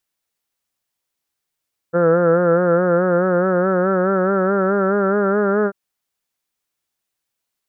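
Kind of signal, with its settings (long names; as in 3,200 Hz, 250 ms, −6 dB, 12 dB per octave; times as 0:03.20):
vowel by formant synthesis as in heard, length 3.79 s, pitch 168 Hz, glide +3.5 semitones, vibrato 4.7 Hz, vibrato depth 0.65 semitones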